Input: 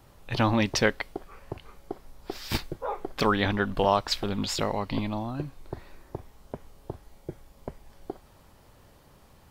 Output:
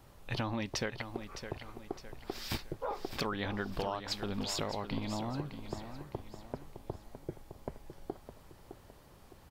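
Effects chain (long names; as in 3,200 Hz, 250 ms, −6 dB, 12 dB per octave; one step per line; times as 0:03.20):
downward compressor 6 to 1, threshold −30 dBFS, peak gain reduction 12.5 dB
on a send: repeating echo 611 ms, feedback 41%, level −10 dB
on the sum: level −2.5 dB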